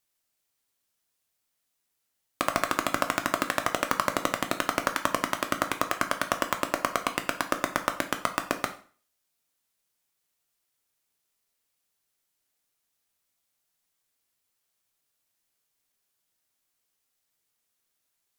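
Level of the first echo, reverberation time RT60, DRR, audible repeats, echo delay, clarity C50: none, 0.40 s, 6.5 dB, none, none, 12.5 dB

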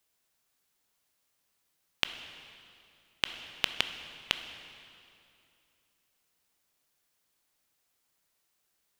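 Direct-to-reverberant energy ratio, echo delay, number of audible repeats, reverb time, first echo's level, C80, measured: 8.0 dB, none, none, 2.6 s, none, 10.0 dB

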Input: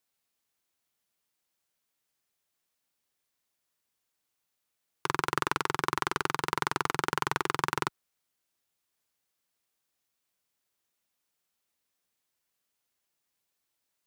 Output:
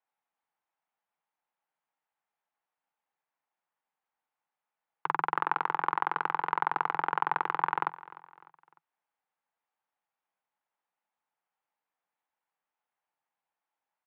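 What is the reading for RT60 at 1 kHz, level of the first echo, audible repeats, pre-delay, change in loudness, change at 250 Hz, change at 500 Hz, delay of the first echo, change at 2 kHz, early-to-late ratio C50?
none, -18.5 dB, 3, none, +0.5 dB, -8.5 dB, -6.0 dB, 0.301 s, -2.0 dB, none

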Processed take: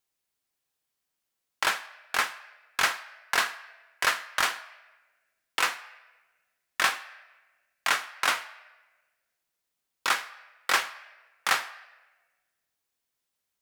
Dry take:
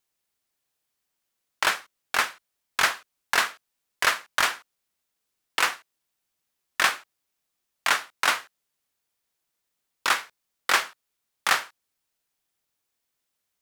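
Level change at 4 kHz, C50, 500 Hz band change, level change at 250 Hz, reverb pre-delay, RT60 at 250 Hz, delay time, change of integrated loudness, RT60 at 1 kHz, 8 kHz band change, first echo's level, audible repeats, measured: -2.5 dB, 15.5 dB, -3.0 dB, -3.0 dB, 3 ms, 1.5 s, none, -3.0 dB, 1.1 s, -2.5 dB, none, none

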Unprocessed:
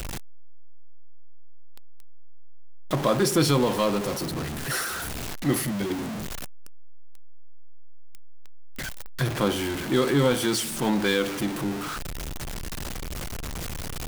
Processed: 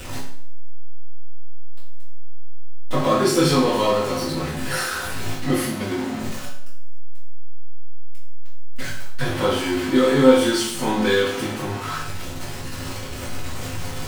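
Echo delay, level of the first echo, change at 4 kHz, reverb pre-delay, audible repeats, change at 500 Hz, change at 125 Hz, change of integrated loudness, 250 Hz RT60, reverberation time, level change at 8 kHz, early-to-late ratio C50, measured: none, none, +4.0 dB, 4 ms, none, +6.0 dB, +1.5 dB, +4.5 dB, 0.60 s, 0.60 s, +1.5 dB, 3.5 dB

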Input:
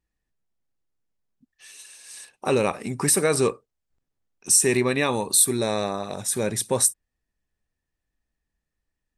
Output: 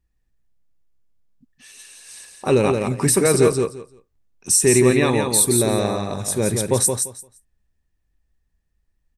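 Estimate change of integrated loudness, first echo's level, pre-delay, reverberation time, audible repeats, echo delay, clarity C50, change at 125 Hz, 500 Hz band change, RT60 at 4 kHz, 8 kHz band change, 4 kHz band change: +4.0 dB, -5.0 dB, none, none, 3, 0.172 s, none, +9.0 dB, +6.0 dB, none, +2.0 dB, +2.0 dB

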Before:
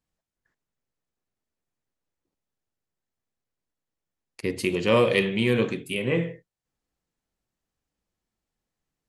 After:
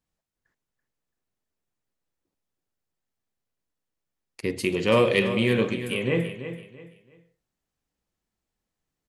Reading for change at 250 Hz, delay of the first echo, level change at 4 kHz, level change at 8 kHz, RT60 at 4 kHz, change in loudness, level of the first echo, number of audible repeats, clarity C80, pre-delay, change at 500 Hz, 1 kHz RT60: +0.5 dB, 0.334 s, +0.5 dB, +0.5 dB, none, 0.0 dB, -11.0 dB, 3, none, none, +0.5 dB, none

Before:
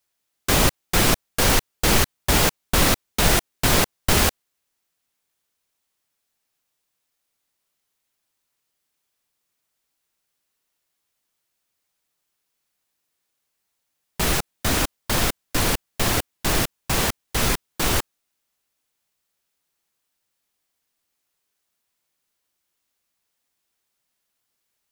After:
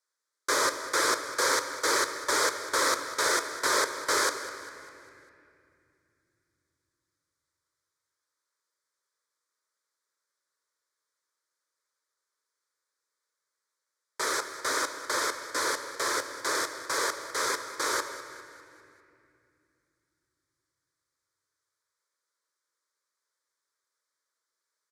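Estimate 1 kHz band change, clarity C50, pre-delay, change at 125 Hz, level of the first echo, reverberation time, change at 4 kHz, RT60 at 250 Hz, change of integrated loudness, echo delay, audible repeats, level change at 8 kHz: -3.0 dB, 8.5 dB, 4 ms, -31.5 dB, -14.5 dB, 2.5 s, -7.5 dB, 4.4 s, -7.0 dB, 0.2 s, 4, -6.0 dB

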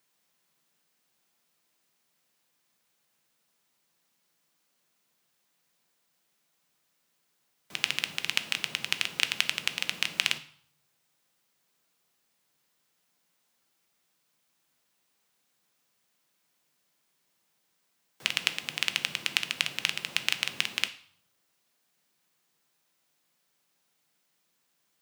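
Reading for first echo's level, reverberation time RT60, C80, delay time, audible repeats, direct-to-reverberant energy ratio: none, 0.60 s, 19.0 dB, none, none, 10.0 dB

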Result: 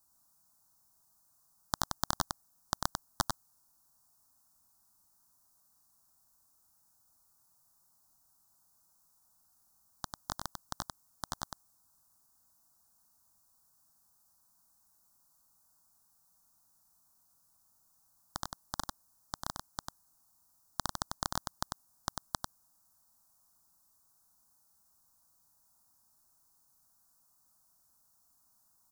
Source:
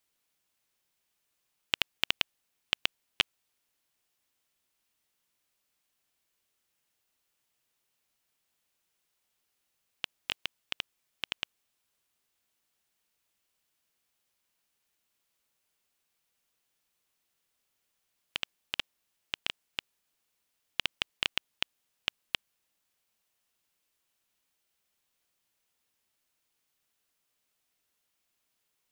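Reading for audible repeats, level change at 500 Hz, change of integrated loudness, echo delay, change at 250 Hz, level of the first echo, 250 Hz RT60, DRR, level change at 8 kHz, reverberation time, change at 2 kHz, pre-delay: 1, +2.0 dB, -5.0 dB, 96 ms, +7.0 dB, -4.5 dB, none, none, +9.0 dB, none, -10.0 dB, none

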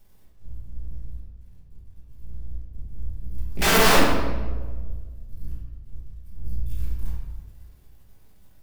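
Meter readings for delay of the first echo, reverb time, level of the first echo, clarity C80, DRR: none, 1.4 s, none, 3.0 dB, -7.0 dB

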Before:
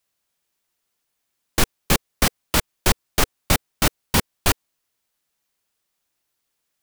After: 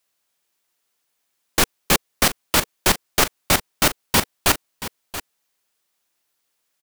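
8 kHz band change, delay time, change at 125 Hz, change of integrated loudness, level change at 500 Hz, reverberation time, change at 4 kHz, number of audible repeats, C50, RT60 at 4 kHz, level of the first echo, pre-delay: +3.0 dB, 0.679 s, -3.5 dB, +2.5 dB, +2.0 dB, none, +3.0 dB, 1, none, none, -13.5 dB, none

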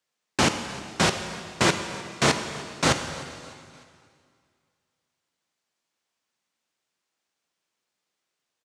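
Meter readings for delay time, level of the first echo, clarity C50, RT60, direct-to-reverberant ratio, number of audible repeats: 0.303 s, -20.5 dB, 8.0 dB, 2.2 s, 7.0 dB, 3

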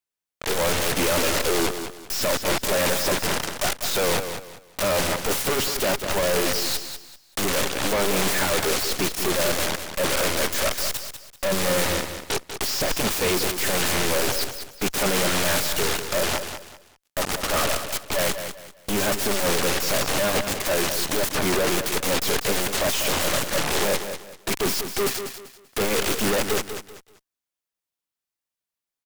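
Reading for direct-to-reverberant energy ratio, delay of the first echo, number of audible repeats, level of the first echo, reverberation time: none, 0.194 s, 3, -9.0 dB, none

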